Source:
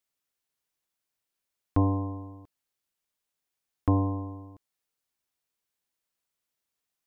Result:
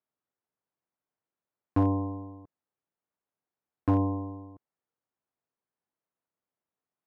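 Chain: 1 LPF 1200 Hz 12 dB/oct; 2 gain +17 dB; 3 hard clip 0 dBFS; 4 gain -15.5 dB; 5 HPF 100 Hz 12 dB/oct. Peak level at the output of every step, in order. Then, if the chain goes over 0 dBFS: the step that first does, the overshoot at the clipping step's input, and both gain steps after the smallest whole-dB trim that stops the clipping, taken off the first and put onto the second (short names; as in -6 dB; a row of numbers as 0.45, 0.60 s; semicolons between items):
-12.0, +5.0, 0.0, -15.5, -13.0 dBFS; step 2, 5.0 dB; step 2 +12 dB, step 4 -10.5 dB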